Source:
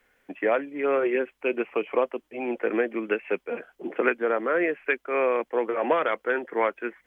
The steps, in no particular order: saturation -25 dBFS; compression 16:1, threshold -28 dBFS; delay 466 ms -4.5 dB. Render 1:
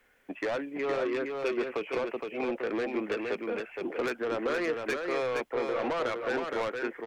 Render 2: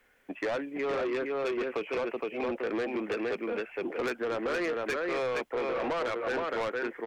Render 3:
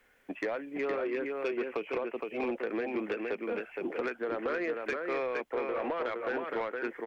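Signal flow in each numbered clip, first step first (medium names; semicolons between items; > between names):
saturation > compression > delay; delay > saturation > compression; compression > delay > saturation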